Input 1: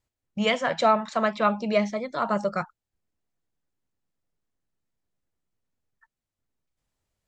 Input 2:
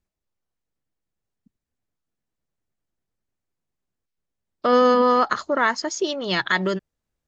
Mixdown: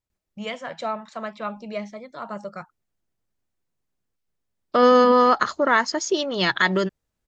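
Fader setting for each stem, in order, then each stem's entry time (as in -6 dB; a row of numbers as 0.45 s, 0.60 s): -8.0 dB, +1.5 dB; 0.00 s, 0.10 s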